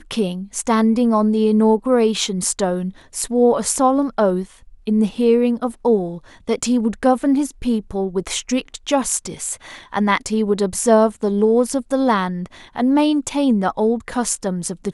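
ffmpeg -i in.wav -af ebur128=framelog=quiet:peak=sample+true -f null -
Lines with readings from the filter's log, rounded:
Integrated loudness:
  I:         -18.7 LUFS
  Threshold: -28.9 LUFS
Loudness range:
  LRA:         3.4 LU
  Threshold: -38.9 LUFS
  LRA low:   -20.9 LUFS
  LRA high:  -17.5 LUFS
Sample peak:
  Peak:       -2.0 dBFS
True peak:
  Peak:       -2.0 dBFS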